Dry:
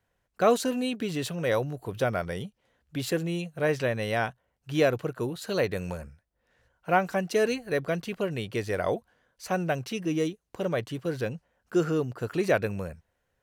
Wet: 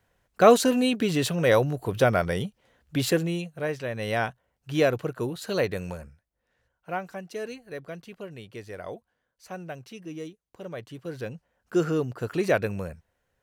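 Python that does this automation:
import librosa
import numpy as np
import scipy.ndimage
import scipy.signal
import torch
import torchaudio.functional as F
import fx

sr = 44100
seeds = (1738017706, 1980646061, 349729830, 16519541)

y = fx.gain(x, sr, db=fx.line((3.05, 6.0), (3.82, -6.0), (4.09, 1.0), (5.62, 1.0), (7.22, -10.0), (10.6, -10.0), (11.78, 1.0)))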